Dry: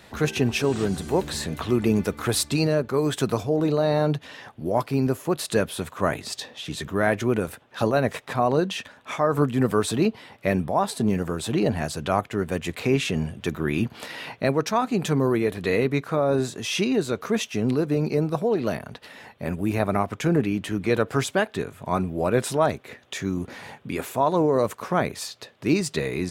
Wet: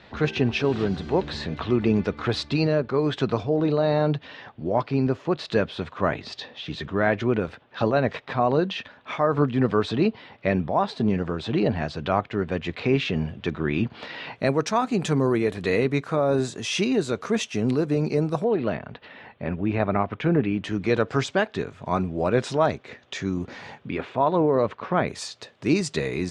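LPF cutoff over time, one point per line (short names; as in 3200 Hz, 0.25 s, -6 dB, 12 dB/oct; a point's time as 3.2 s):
LPF 24 dB/oct
4500 Hz
from 14.36 s 8700 Hz
from 18.44 s 3500 Hz
from 20.64 s 6200 Hz
from 23.88 s 3700 Hz
from 25.08 s 8100 Hz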